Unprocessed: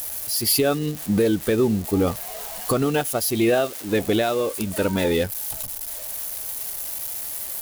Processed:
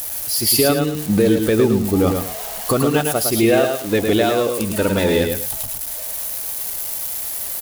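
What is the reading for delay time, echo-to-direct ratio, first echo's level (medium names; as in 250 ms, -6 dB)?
108 ms, -4.5 dB, -5.0 dB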